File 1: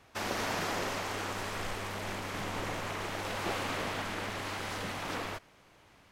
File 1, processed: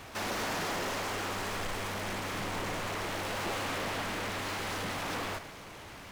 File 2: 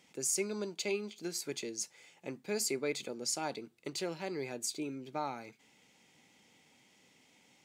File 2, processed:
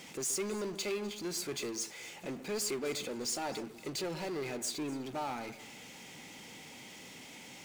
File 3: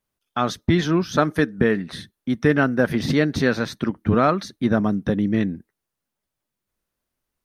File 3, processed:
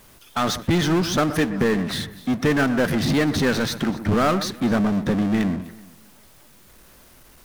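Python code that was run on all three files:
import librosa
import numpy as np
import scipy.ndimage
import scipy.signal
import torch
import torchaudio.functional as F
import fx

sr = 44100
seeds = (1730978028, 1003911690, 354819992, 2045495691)

y = fx.power_curve(x, sr, exponent=0.5)
y = fx.echo_alternate(y, sr, ms=126, hz=2200.0, feedback_pct=51, wet_db=-13.0)
y = y * 10.0 ** (-6.5 / 20.0)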